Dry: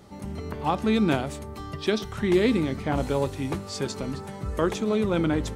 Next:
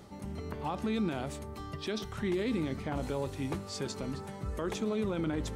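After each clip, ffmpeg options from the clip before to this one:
ffmpeg -i in.wav -af "alimiter=limit=-18.5dB:level=0:latency=1:release=33,areverse,acompressor=mode=upward:threshold=-33dB:ratio=2.5,areverse,volume=-5.5dB" out.wav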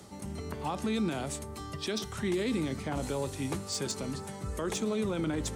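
ffmpeg -i in.wav -filter_complex "[0:a]highpass=50,equalizer=frequency=8500:width=0.7:gain=10,acrossover=split=140|550|2600[link_01][link_02][link_03][link_04];[link_04]asoftclip=type=hard:threshold=-29dB[link_05];[link_01][link_02][link_03][link_05]amix=inputs=4:normalize=0,volume=1dB" out.wav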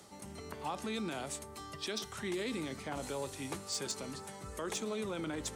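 ffmpeg -i in.wav -af "lowshelf=frequency=300:gain=-10,volume=-2.5dB" out.wav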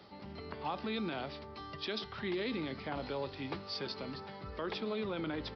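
ffmpeg -i in.wav -af "aresample=11025,aresample=44100,volume=1dB" out.wav

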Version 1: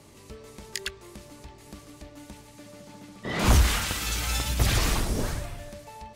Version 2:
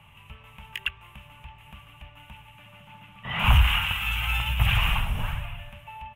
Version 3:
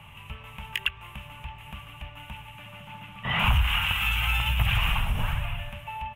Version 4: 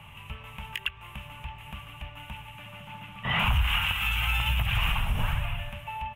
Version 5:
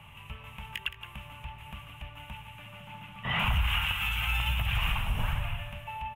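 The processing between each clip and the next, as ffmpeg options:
ffmpeg -i in.wav -af "firequalizer=gain_entry='entry(140,0);entry(320,-24);entry(860,2);entry(1900,-2);entry(2800,11);entry(4400,-27);entry(13000,-5)':delay=0.05:min_phase=1,volume=1.5dB" out.wav
ffmpeg -i in.wav -af "acompressor=threshold=-29dB:ratio=2.5,volume=5.5dB" out.wav
ffmpeg -i in.wav -af "alimiter=limit=-15.5dB:level=0:latency=1:release=286" out.wav
ffmpeg -i in.wav -af "aecho=1:1:169:0.251,volume=-3dB" out.wav

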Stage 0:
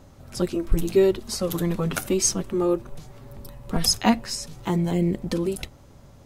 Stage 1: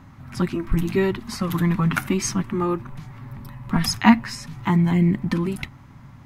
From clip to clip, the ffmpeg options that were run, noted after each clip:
ffmpeg -i in.wav -af "equalizer=frequency=125:width_type=o:width=1:gain=11,equalizer=frequency=250:width_type=o:width=1:gain=9,equalizer=frequency=500:width_type=o:width=1:gain=-11,equalizer=frequency=1000:width_type=o:width=1:gain=11,equalizer=frequency=2000:width_type=o:width=1:gain=11,equalizer=frequency=8000:width_type=o:width=1:gain=-4,volume=-3.5dB" out.wav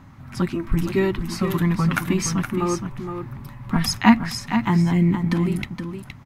ffmpeg -i in.wav -af "aecho=1:1:468:0.398" out.wav

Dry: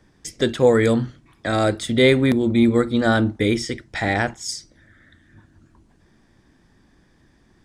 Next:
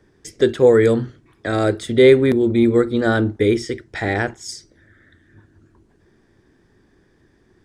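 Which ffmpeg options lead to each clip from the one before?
ffmpeg -i in.wav -af "equalizer=frequency=100:width_type=o:width=0.67:gain=5,equalizer=frequency=400:width_type=o:width=0.67:gain=11,equalizer=frequency=1600:width_type=o:width=0.67:gain=4,volume=-3.5dB" out.wav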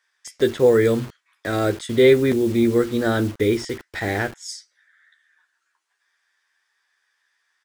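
ffmpeg -i in.wav -filter_complex "[0:a]acrossover=split=1100[link_01][link_02];[link_01]acrusher=bits=5:mix=0:aa=0.000001[link_03];[link_02]asplit=2[link_04][link_05];[link_05]adelay=12,volume=-4dB[link_06];[link_04][link_06]amix=inputs=2:normalize=0[link_07];[link_03][link_07]amix=inputs=2:normalize=0,volume=-3dB" out.wav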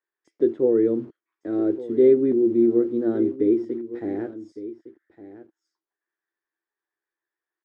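ffmpeg -i in.wav -af "bandpass=frequency=320:width_type=q:width=3.8:csg=0,aecho=1:1:1160:0.178,volume=4dB" out.wav

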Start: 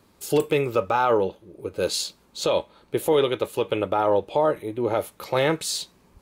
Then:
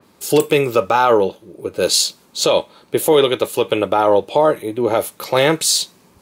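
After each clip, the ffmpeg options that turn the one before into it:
ffmpeg -i in.wav -af "highpass=120,adynamicequalizer=threshold=0.00891:dfrequency=3400:dqfactor=0.7:tfrequency=3400:tqfactor=0.7:attack=5:release=100:ratio=0.375:range=3:mode=boostabove:tftype=highshelf,volume=7dB" out.wav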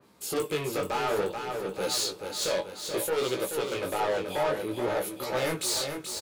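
ffmpeg -i in.wav -af "asoftclip=type=tanh:threshold=-18dB,aecho=1:1:431|862|1293|1724|2155|2586:0.473|0.246|0.128|0.0665|0.0346|0.018,flanger=delay=15:depth=6.6:speed=0.58,volume=-4.5dB" out.wav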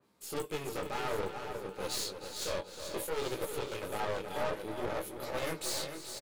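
ffmpeg -i in.wav -filter_complex "[0:a]aeval=exprs='0.133*(cos(1*acos(clip(val(0)/0.133,-1,1)))-cos(1*PI/2))+0.0119*(cos(4*acos(clip(val(0)/0.133,-1,1)))-cos(4*PI/2))+0.0075*(cos(7*acos(clip(val(0)/0.133,-1,1)))-cos(7*PI/2))':channel_layout=same,aeval=exprs='clip(val(0),-1,0.0237)':channel_layout=same,asplit=2[link_01][link_02];[link_02]adelay=314.9,volume=-9dB,highshelf=frequency=4000:gain=-7.08[link_03];[link_01][link_03]amix=inputs=2:normalize=0,volume=-6.5dB" out.wav

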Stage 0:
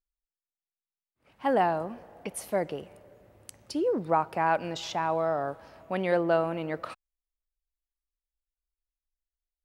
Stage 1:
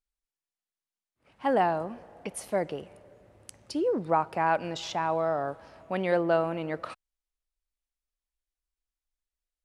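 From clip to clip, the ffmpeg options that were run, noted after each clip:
ffmpeg -i in.wav -af "lowpass=frequency=11000:width=0.5412,lowpass=frequency=11000:width=1.3066" out.wav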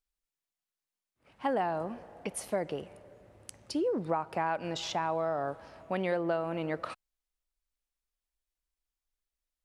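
ffmpeg -i in.wav -af "acompressor=threshold=-27dB:ratio=5" out.wav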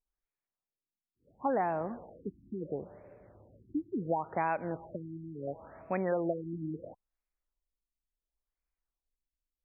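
ffmpeg -i in.wav -af "afftfilt=real='re*lt(b*sr/1024,340*pow(2700/340,0.5+0.5*sin(2*PI*0.72*pts/sr)))':imag='im*lt(b*sr/1024,340*pow(2700/340,0.5+0.5*sin(2*PI*0.72*pts/sr)))':win_size=1024:overlap=0.75" out.wav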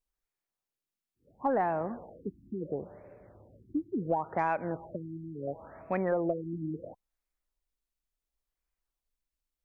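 ffmpeg -i in.wav -af "aeval=exprs='0.126*(cos(1*acos(clip(val(0)/0.126,-1,1)))-cos(1*PI/2))+0.00447*(cos(4*acos(clip(val(0)/0.126,-1,1)))-cos(4*PI/2))+0.002*(cos(6*acos(clip(val(0)/0.126,-1,1)))-cos(6*PI/2))':channel_layout=same,volume=2dB" out.wav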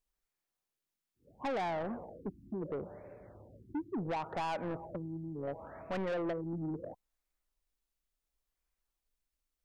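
ffmpeg -i in.wav -af "asoftclip=type=tanh:threshold=-33dB,volume=1dB" out.wav

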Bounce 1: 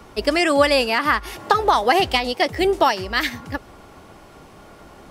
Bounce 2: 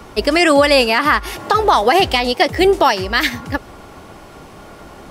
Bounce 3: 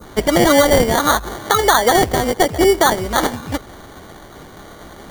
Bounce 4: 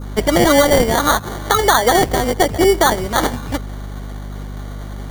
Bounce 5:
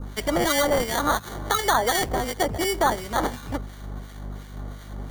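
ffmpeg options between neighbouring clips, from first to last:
ffmpeg -i in.wav -af "alimiter=level_in=7.5dB:limit=-1dB:release=50:level=0:latency=1,volume=-1dB" out.wav
ffmpeg -i in.wav -af "acrusher=samples=17:mix=1:aa=0.000001,adynamicequalizer=threshold=0.0398:dfrequency=2600:dqfactor=0.81:tfrequency=2600:tqfactor=0.81:attack=5:release=100:ratio=0.375:range=2:mode=cutabove:tftype=bell" out.wav
ffmpeg -i in.wav -af "aeval=exprs='val(0)+0.0447*(sin(2*PI*50*n/s)+sin(2*PI*2*50*n/s)/2+sin(2*PI*3*50*n/s)/3+sin(2*PI*4*50*n/s)/4+sin(2*PI*5*50*n/s)/5)':channel_layout=same" out.wav
ffmpeg -i in.wav -filter_complex "[0:a]acrossover=split=1400[link_01][link_02];[link_01]aeval=exprs='val(0)*(1-0.7/2+0.7/2*cos(2*PI*2.8*n/s))':channel_layout=same[link_03];[link_02]aeval=exprs='val(0)*(1-0.7/2-0.7/2*cos(2*PI*2.8*n/s))':channel_layout=same[link_04];[link_03][link_04]amix=inputs=2:normalize=0,acrossover=split=690[link_05][link_06];[link_05]asoftclip=type=tanh:threshold=-17.5dB[link_07];[link_07][link_06]amix=inputs=2:normalize=0,volume=-4dB" out.wav

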